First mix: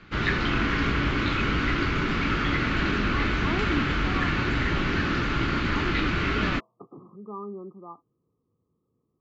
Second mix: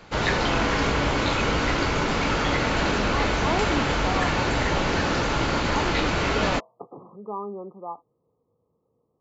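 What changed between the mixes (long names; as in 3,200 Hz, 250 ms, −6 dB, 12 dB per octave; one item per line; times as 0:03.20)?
background: remove low-pass filter 3,200 Hz 12 dB per octave
master: add flat-topped bell 670 Hz +12 dB 1.3 octaves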